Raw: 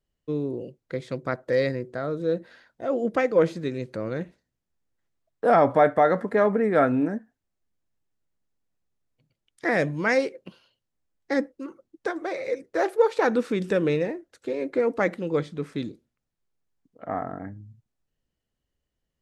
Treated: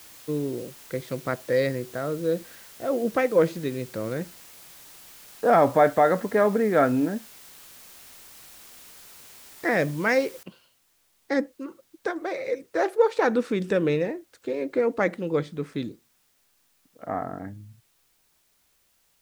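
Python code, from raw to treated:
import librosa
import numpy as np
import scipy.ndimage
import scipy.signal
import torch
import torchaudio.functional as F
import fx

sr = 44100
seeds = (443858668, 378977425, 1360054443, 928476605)

y = fx.noise_floor_step(x, sr, seeds[0], at_s=10.43, before_db=-48, after_db=-67, tilt_db=0.0)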